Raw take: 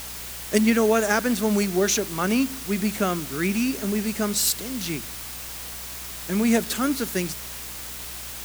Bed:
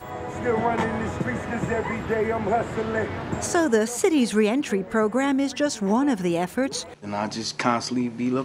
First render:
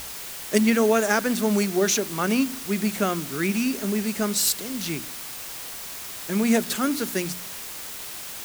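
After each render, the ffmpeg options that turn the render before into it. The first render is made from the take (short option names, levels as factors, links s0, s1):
-af "bandreject=f=60:t=h:w=4,bandreject=f=120:t=h:w=4,bandreject=f=180:t=h:w=4,bandreject=f=240:t=h:w=4,bandreject=f=300:t=h:w=4"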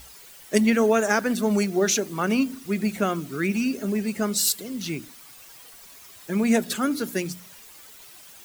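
-af "afftdn=nr=13:nf=-36"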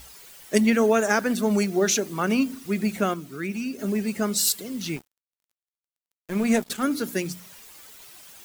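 -filter_complex "[0:a]asettb=1/sr,asplit=3[s0][s1][s2];[s0]atrim=end=4.964[s3];[s1]atrim=start=4.96:end=6.83,asetpts=PTS-STARTPTS,afade=t=in:d=0.004:c=qsin,afade=t=out:st=1.866:d=0.004:c=qsin,aeval=exprs='sgn(val(0))*max(abs(val(0))-0.0158,0)':c=same[s4];[s2]atrim=start=6.826[s5];[s3][s4]acrossfade=d=0.004:c1=hsin:c2=qsin[s6];[s6][s5]acrossfade=d=0.004:c1=qsin:c2=hsin,asplit=3[s7][s8][s9];[s7]atrim=end=3.142[s10];[s8]atrim=start=3.138:end=3.792,asetpts=PTS-STARTPTS,volume=0.531[s11];[s9]atrim=start=3.788[s12];[s10][s11]acrossfade=d=0.004:c1=hsin:c2=hsin[s13];[s13][s12]acrossfade=d=0.004:c1=hsin:c2=hsin"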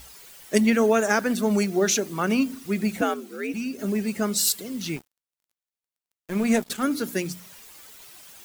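-filter_complex "[0:a]asettb=1/sr,asplit=3[s0][s1][s2];[s0]atrim=end=3.014[s3];[s1]atrim=start=3.01:end=3.54,asetpts=PTS-STARTPTS,afade=t=in:d=0.004:c=qsin,afade=t=out:st=0.526:d=0.004:c=qsin,afreqshift=74[s4];[s2]atrim=start=3.536[s5];[s3][s4]acrossfade=d=0.004:c1=hsin:c2=qsin[s6];[s6][s5]acrossfade=d=0.004:c1=qsin:c2=hsin"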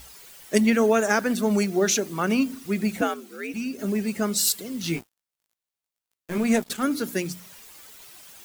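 -filter_complex "[0:a]asettb=1/sr,asplit=3[s0][s1][s2];[s0]atrim=end=3.074[s3];[s1]atrim=start=3.07:end=3.56,asetpts=PTS-STARTPTS,afade=t=in:d=0.004:c=qsin,afade=t=out:st=0.486:d=0.004:c=qsin,equalizer=f=320:t=o:w=2.7:g=-4.5[s4];[s2]atrim=start=3.556[s5];[s3][s4]acrossfade=d=0.004:c1=hsin:c2=qsin[s6];[s6][s5]acrossfade=d=0.004:c1=qsin:c2=hsin,asettb=1/sr,asplit=3[s7][s8][s9];[s7]atrim=end=4.824[s10];[s8]atrim=start=4.82:end=6.38,asetpts=PTS-STARTPTS,afade=t=in:d=0.004:c=qsin,afade=t=out:st=1.556:d=0.004:c=qsin,asplit=2[s11][s12];[s12]adelay=18,volume=0.794[s13];[s11][s13]amix=inputs=2:normalize=0,atrim=end_sample=68796[s14];[s9]atrim=start=6.376[s15];[s10][s14]acrossfade=d=0.004:c1=hsin:c2=qsin[s16];[s16][s15]acrossfade=d=0.004:c1=qsin:c2=hsin"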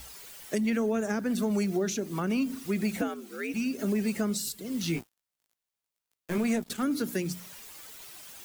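-filter_complex "[0:a]acrossover=split=340[s0][s1];[s0]alimiter=level_in=1.06:limit=0.0631:level=0:latency=1,volume=0.944[s2];[s1]acompressor=threshold=0.0251:ratio=10[s3];[s2][s3]amix=inputs=2:normalize=0"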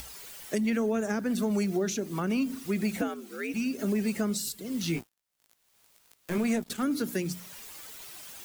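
-af "acompressor=mode=upward:threshold=0.01:ratio=2.5"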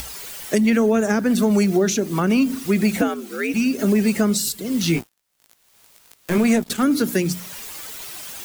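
-af "volume=3.35"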